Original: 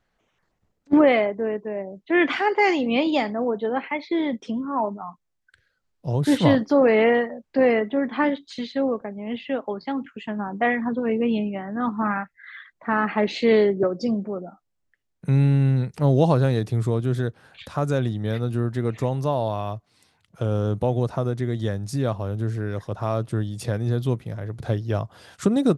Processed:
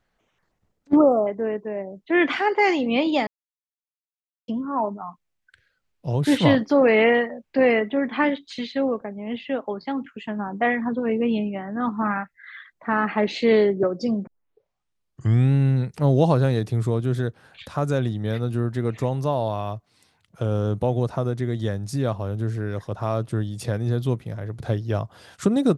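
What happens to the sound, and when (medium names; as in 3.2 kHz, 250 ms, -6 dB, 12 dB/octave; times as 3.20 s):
0.96–1.27 s: spectral selection erased 1.4–5.2 kHz
3.27–4.48 s: mute
5.01–9.00 s: peaking EQ 2.5 kHz +5.5 dB 0.84 oct
14.27 s: tape start 1.26 s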